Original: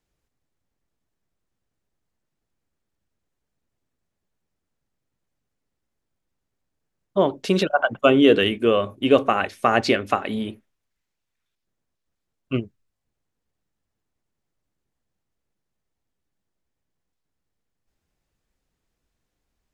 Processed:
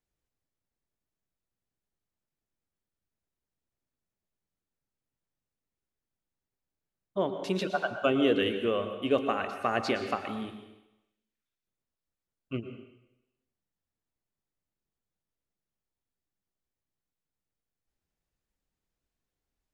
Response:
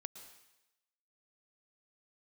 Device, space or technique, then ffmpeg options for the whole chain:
bathroom: -filter_complex "[1:a]atrim=start_sample=2205[a];[0:a][a]afir=irnorm=-1:irlink=0,volume=-5.5dB"

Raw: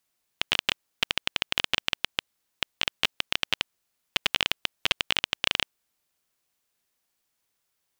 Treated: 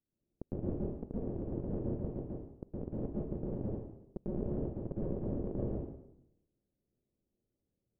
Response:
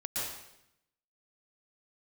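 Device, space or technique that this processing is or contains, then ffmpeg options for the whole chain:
next room: -filter_complex "[0:a]lowpass=f=410:w=0.5412,lowpass=f=410:w=1.3066[a];[1:a]atrim=start_sample=2205[b];[a][b]afir=irnorm=-1:irlink=0,volume=5dB"

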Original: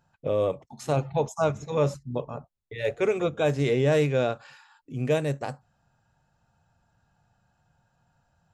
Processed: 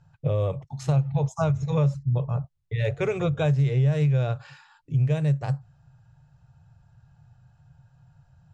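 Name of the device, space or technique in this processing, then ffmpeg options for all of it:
jukebox: -af "lowpass=7.7k,lowshelf=f=180:t=q:w=3:g=9.5,acompressor=threshold=-22dB:ratio=4,volume=1.5dB"

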